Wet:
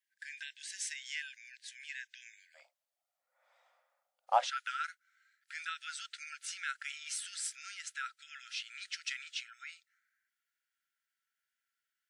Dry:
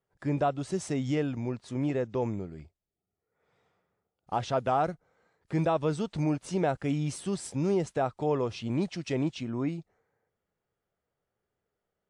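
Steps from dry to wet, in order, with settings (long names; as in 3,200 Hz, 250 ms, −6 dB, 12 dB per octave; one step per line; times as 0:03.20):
linear-phase brick-wall high-pass 1,500 Hz, from 0:02.54 510 Hz, from 0:04.46 1,300 Hz
level +3 dB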